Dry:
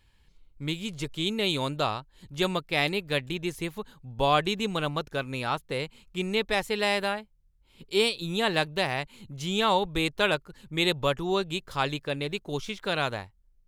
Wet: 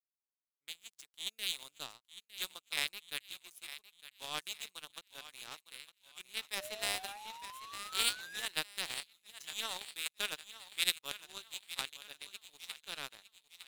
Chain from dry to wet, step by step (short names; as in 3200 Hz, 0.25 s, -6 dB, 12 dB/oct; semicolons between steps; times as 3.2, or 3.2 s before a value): differentiator; on a send: thinning echo 0.908 s, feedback 70%, high-pass 910 Hz, level -6 dB; on the sum: painted sound rise, 6.57–8.48, 580–1800 Hz -39 dBFS; power-law curve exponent 2; gain +8 dB